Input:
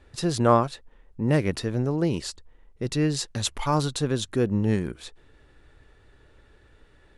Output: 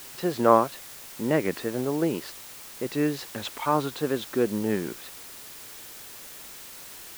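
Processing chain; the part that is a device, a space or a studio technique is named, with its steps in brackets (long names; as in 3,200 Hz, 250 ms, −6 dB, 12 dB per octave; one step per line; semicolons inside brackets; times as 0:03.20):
wax cylinder (band-pass filter 260–2,600 Hz; tape wow and flutter; white noise bed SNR 15 dB)
level +1.5 dB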